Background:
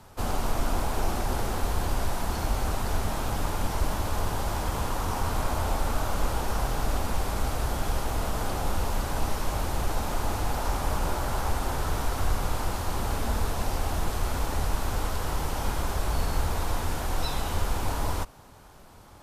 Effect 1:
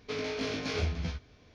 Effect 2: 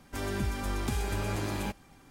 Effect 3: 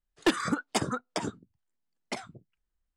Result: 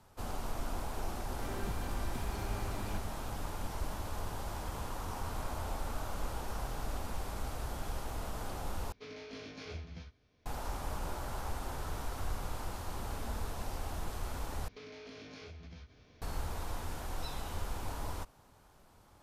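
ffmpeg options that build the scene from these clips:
ffmpeg -i bed.wav -i cue0.wav -i cue1.wav -filter_complex "[1:a]asplit=2[link_01][link_02];[0:a]volume=-11dB[link_03];[2:a]bass=frequency=250:gain=0,treble=frequency=4000:gain=-7[link_04];[link_01]acompressor=mode=upward:threshold=-46dB:ratio=4:attack=1.4:release=630:knee=2.83:detection=peak[link_05];[link_02]acompressor=threshold=-45dB:ratio=6:attack=3.2:release=140:knee=1:detection=peak[link_06];[link_03]asplit=3[link_07][link_08][link_09];[link_07]atrim=end=8.924[link_10];[link_05]atrim=end=1.54,asetpts=PTS-STARTPTS,volume=-13dB[link_11];[link_08]atrim=start=10.456:end=14.684[link_12];[link_06]atrim=end=1.54,asetpts=PTS-STARTPTS,volume=-2.5dB[link_13];[link_09]atrim=start=16.216[link_14];[link_04]atrim=end=2.1,asetpts=PTS-STARTPTS,volume=-10dB,afade=type=in:duration=0.004:curve=hsin,afade=type=out:start_time=2.096:duration=0.004:curve=hsin,adelay=1270[link_15];[link_10][link_11]acrossfade=duration=0.004:curve1=hsin:curve2=hsin[link_16];[link_16][link_12]acrossfade=duration=0.004:curve1=hsin:curve2=hsin[link_17];[link_17][link_13]acrossfade=duration=0.004:curve1=hsin:curve2=hsin[link_18];[link_18][link_14]acrossfade=duration=0.004:curve1=hsin:curve2=hsin[link_19];[link_19][link_15]amix=inputs=2:normalize=0" out.wav

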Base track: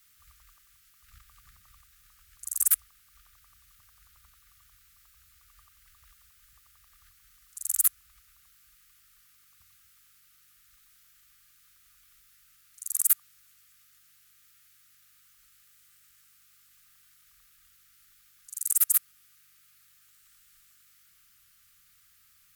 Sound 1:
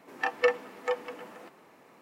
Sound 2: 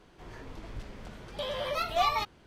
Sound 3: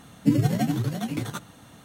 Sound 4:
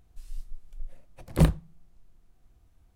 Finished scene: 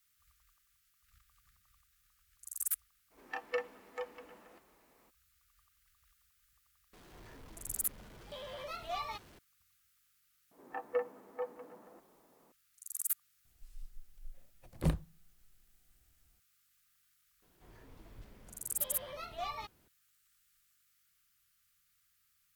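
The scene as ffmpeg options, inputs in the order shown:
ffmpeg -i bed.wav -i cue0.wav -i cue1.wav -i cue2.wav -i cue3.wav -filter_complex "[1:a]asplit=2[link_01][link_02];[2:a]asplit=2[link_03][link_04];[0:a]volume=-12dB[link_05];[link_03]aeval=exprs='val(0)+0.5*0.00841*sgn(val(0))':channel_layout=same[link_06];[link_02]lowpass=1100[link_07];[link_04]lowshelf=frequency=430:gain=2.5[link_08];[link_01]atrim=end=2.01,asetpts=PTS-STARTPTS,volume=-11.5dB,afade=type=in:duration=0.02,afade=type=out:start_time=1.99:duration=0.02,adelay=3100[link_09];[link_06]atrim=end=2.46,asetpts=PTS-STARTPTS,volume=-13dB,afade=type=in:duration=0.004:curve=hsin,afade=type=out:start_time=2.456:duration=0.004:curve=hsin,adelay=6930[link_10];[link_07]atrim=end=2.01,asetpts=PTS-STARTPTS,volume=-8.5dB,afade=type=in:duration=0.004:curve=hsin,afade=type=out:start_time=2.006:duration=0.004:curve=hsin,adelay=10510[link_11];[4:a]atrim=end=2.95,asetpts=PTS-STARTPTS,volume=-11dB,afade=type=in:duration=0.004:curve=hsin,afade=type=out:start_time=2.946:duration=0.004:curve=hsin,adelay=13450[link_12];[link_08]atrim=end=2.46,asetpts=PTS-STARTPTS,volume=-14dB,afade=type=in:duration=0.004:curve=hsin,afade=type=out:start_time=2.456:duration=0.004:curve=hsin,adelay=17420[link_13];[link_05][link_09][link_10][link_11][link_12][link_13]amix=inputs=6:normalize=0" out.wav

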